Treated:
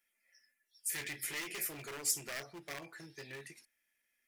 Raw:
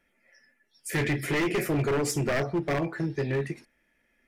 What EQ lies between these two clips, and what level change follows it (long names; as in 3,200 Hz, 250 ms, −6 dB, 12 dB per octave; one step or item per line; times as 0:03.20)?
first-order pre-emphasis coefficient 0.97
low-shelf EQ 420 Hz +3.5 dB
0.0 dB